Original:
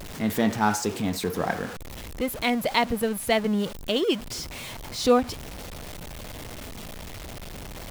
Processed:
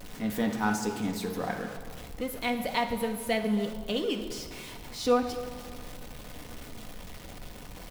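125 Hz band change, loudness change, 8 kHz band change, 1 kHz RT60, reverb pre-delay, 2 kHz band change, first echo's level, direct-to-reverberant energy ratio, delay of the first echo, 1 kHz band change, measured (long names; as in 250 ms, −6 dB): −5.5 dB, −5.0 dB, −6.5 dB, 1.9 s, 4 ms, −5.0 dB, −16.5 dB, 3.0 dB, 272 ms, −5.0 dB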